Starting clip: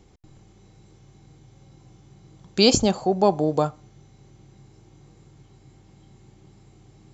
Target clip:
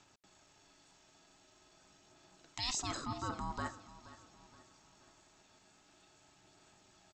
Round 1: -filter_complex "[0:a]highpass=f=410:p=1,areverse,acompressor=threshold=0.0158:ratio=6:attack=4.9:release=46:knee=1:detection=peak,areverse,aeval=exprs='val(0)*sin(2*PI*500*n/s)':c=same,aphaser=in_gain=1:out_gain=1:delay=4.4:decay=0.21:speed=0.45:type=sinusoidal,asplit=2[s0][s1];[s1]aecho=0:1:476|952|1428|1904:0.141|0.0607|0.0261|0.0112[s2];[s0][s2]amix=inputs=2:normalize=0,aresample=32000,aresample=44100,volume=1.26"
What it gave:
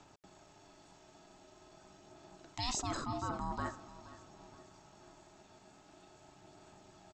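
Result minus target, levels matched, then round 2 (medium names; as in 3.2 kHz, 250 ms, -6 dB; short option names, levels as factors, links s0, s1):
500 Hz band +4.5 dB
-filter_complex "[0:a]highpass=f=1400:p=1,areverse,acompressor=threshold=0.0158:ratio=6:attack=4.9:release=46:knee=1:detection=peak,areverse,aeval=exprs='val(0)*sin(2*PI*500*n/s)':c=same,aphaser=in_gain=1:out_gain=1:delay=4.4:decay=0.21:speed=0.45:type=sinusoidal,asplit=2[s0][s1];[s1]aecho=0:1:476|952|1428|1904:0.141|0.0607|0.0261|0.0112[s2];[s0][s2]amix=inputs=2:normalize=0,aresample=32000,aresample=44100,volume=1.26"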